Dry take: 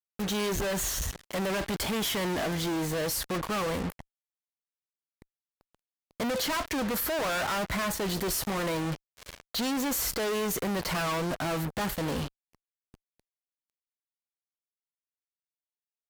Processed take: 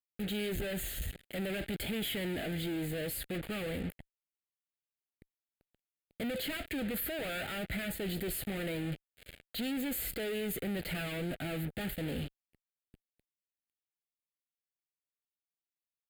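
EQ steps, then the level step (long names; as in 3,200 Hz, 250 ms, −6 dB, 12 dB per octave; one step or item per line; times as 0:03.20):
phaser with its sweep stopped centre 2,500 Hz, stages 4
−4.0 dB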